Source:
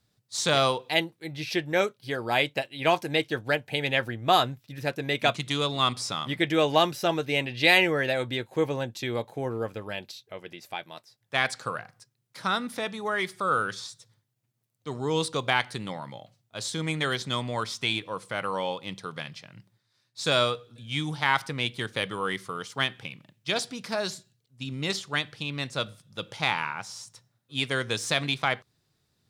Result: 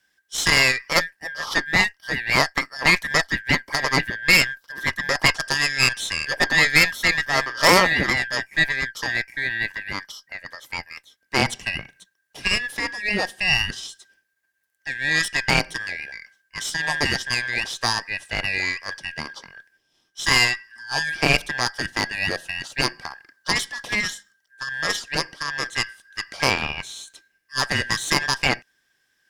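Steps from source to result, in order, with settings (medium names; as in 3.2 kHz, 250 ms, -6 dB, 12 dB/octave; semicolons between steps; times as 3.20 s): four frequency bands reordered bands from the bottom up 2143; Chebyshev shaper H 6 -15 dB, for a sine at -5.5 dBFS; trim +4.5 dB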